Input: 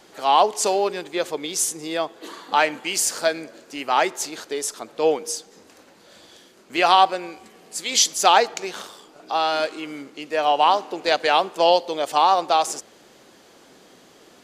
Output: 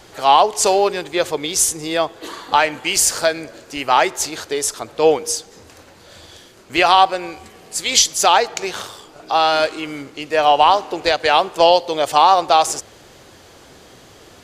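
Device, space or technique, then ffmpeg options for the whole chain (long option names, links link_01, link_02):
car stereo with a boomy subwoofer: -af "lowshelf=frequency=140:width_type=q:width=1.5:gain=11.5,alimiter=limit=-8dB:level=0:latency=1:release=261,volume=6.5dB"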